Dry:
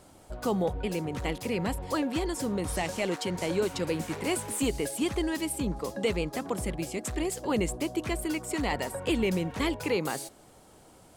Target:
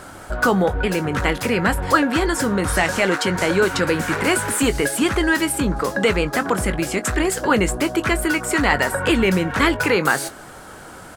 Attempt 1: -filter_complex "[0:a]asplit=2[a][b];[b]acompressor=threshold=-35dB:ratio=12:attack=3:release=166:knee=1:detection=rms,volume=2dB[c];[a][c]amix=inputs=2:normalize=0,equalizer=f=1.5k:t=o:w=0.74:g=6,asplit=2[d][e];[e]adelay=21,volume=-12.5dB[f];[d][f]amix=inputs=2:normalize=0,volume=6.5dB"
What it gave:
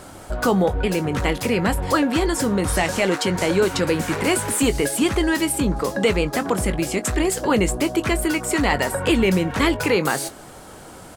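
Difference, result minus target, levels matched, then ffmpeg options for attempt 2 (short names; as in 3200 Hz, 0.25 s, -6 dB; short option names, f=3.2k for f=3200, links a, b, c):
2000 Hz band -3.5 dB
-filter_complex "[0:a]asplit=2[a][b];[b]acompressor=threshold=-35dB:ratio=12:attack=3:release=166:knee=1:detection=rms,volume=2dB[c];[a][c]amix=inputs=2:normalize=0,equalizer=f=1.5k:t=o:w=0.74:g=14,asplit=2[d][e];[e]adelay=21,volume=-12.5dB[f];[d][f]amix=inputs=2:normalize=0,volume=6.5dB"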